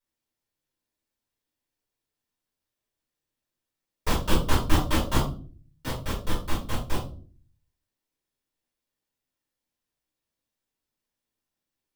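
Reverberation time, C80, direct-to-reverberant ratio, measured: 0.45 s, 12.5 dB, −6.0 dB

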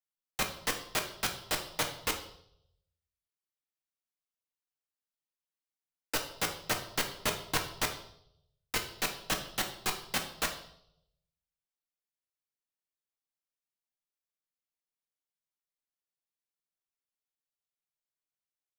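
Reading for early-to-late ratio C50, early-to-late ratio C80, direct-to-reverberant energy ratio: 9.0 dB, 12.5 dB, 3.5 dB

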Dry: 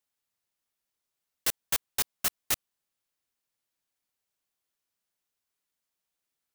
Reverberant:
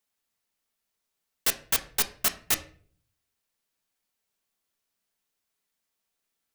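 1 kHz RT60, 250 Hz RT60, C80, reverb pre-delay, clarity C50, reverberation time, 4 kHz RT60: 0.40 s, 0.75 s, 18.5 dB, 4 ms, 14.5 dB, 0.50 s, 0.35 s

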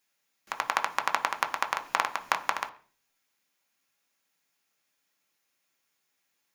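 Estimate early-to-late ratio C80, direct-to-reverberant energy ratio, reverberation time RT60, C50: 20.0 dB, 5.0 dB, 0.40 s, 16.0 dB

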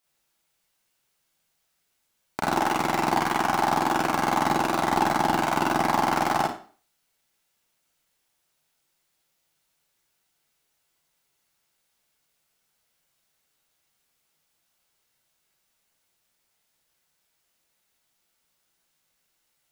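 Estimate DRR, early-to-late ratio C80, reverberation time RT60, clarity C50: −5.0 dB, 7.5 dB, 0.40 s, 2.0 dB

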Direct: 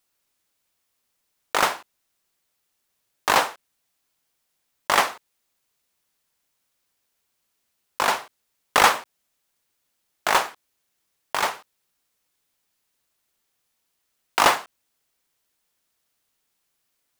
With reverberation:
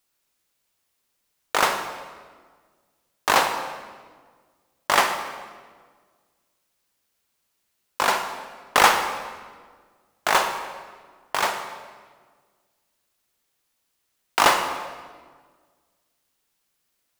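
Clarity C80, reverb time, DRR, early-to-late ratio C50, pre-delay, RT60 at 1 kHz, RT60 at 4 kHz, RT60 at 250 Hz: 8.5 dB, 1.6 s, 6.0 dB, 7.0 dB, 37 ms, 1.5 s, 1.2 s, 1.9 s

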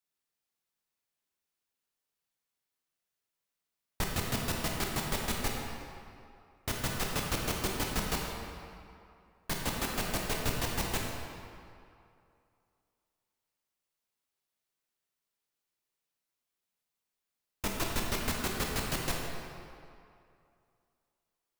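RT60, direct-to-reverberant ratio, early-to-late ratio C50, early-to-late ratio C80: 2.5 s, −1.0 dB, 0.5 dB, 2.0 dB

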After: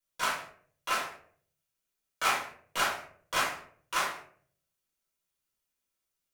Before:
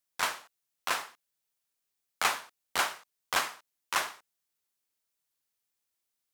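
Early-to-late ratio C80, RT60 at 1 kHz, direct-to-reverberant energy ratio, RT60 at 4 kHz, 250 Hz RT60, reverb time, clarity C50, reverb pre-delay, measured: 10.0 dB, 0.45 s, −8.0 dB, 0.30 s, 0.70 s, 0.55 s, 6.0 dB, 4 ms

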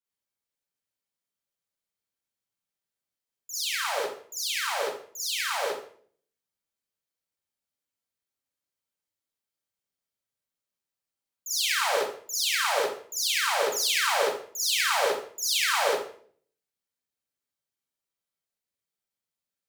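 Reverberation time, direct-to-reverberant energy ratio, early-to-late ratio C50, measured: 0.50 s, −8.5 dB, −1.5 dB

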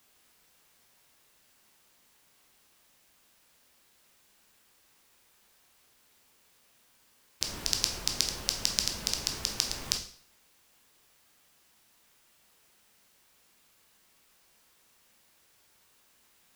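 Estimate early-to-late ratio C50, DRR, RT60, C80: 9.0 dB, 3.5 dB, 0.55 s, 13.0 dB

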